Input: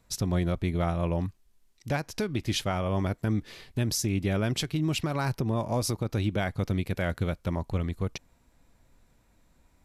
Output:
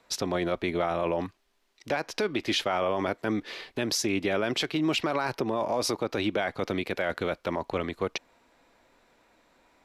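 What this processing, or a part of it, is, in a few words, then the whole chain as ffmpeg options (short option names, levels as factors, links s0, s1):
DJ mixer with the lows and highs turned down: -filter_complex "[0:a]acrossover=split=290 5000:gain=0.0794 1 0.224[s0][s1][s2];[s0][s1][s2]amix=inputs=3:normalize=0,alimiter=level_in=1.26:limit=0.0631:level=0:latency=1:release=18,volume=0.794,volume=2.66"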